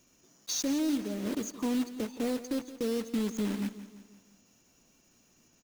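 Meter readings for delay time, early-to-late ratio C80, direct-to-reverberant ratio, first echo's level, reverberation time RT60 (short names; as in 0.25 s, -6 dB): 0.17 s, none, none, -14.5 dB, none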